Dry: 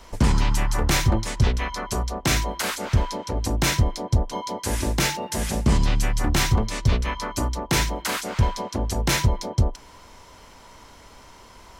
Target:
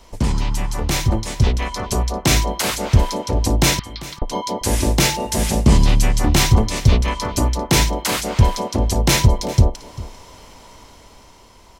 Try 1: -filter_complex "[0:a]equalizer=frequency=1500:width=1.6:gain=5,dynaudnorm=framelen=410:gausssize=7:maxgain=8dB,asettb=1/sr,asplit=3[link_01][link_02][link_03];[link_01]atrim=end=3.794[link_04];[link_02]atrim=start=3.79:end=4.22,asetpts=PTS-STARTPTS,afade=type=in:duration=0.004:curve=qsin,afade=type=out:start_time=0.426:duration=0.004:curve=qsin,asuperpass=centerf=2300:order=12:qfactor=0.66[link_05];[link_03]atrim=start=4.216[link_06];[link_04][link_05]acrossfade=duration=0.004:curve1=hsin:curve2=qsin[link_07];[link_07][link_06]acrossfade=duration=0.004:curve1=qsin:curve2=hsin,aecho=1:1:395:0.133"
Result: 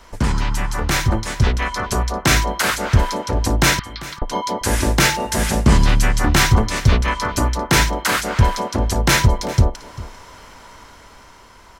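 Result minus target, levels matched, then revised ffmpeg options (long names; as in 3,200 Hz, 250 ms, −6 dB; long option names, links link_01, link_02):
2,000 Hz band +5.5 dB
-filter_complex "[0:a]equalizer=frequency=1500:width=1.6:gain=-6,dynaudnorm=framelen=410:gausssize=7:maxgain=8dB,asettb=1/sr,asplit=3[link_01][link_02][link_03];[link_01]atrim=end=3.794[link_04];[link_02]atrim=start=3.79:end=4.22,asetpts=PTS-STARTPTS,afade=type=in:duration=0.004:curve=qsin,afade=type=out:start_time=0.426:duration=0.004:curve=qsin,asuperpass=centerf=2300:order=12:qfactor=0.66[link_05];[link_03]atrim=start=4.216[link_06];[link_04][link_05]acrossfade=duration=0.004:curve1=hsin:curve2=qsin[link_07];[link_07][link_06]acrossfade=duration=0.004:curve1=qsin:curve2=hsin,aecho=1:1:395:0.133"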